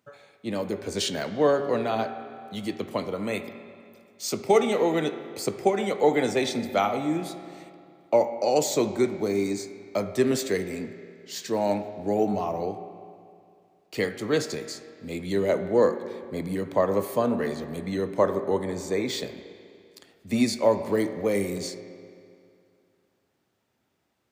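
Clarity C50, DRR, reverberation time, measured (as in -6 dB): 10.0 dB, 8.5 dB, 2.4 s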